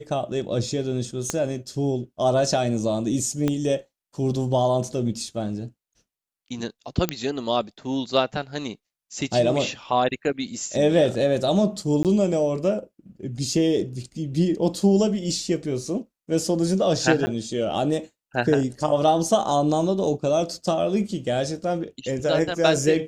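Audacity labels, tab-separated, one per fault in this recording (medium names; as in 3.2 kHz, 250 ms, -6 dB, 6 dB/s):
1.300000	1.300000	pop -10 dBFS
3.480000	3.480000	pop -11 dBFS
7.090000	7.090000	pop -7 dBFS
12.030000	12.050000	dropout 18 ms
17.260000	17.270000	dropout 10 ms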